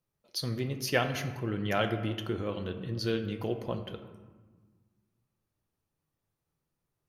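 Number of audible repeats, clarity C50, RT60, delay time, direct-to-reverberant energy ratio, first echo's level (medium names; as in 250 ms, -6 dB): no echo, 9.5 dB, 1.4 s, no echo, 7.0 dB, no echo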